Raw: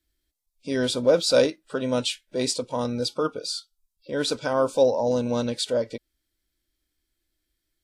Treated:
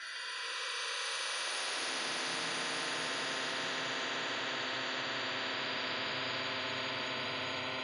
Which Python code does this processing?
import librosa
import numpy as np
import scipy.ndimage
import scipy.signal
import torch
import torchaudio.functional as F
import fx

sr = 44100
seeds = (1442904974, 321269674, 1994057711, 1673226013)

p1 = fx.spec_ripple(x, sr, per_octave=2.0, drift_hz=-0.37, depth_db=15)
p2 = fx.tilt_eq(p1, sr, slope=2.5)
p3 = fx.wah_lfo(p2, sr, hz=3.6, low_hz=780.0, high_hz=1800.0, q=5.3)
p4 = fx.formant_shift(p3, sr, semitones=3)
p5 = fx.bandpass_edges(p4, sr, low_hz=260.0, high_hz=6400.0)
p6 = fx.paulstretch(p5, sr, seeds[0], factor=41.0, window_s=0.05, from_s=1.68)
p7 = p6 + fx.echo_single(p6, sr, ms=1198, db=-4.0, dry=0)
p8 = fx.room_shoebox(p7, sr, seeds[1], volume_m3=170.0, walls='furnished', distance_m=2.9)
p9 = fx.spectral_comp(p8, sr, ratio=10.0)
y = F.gain(torch.from_numpy(p9), -8.5).numpy()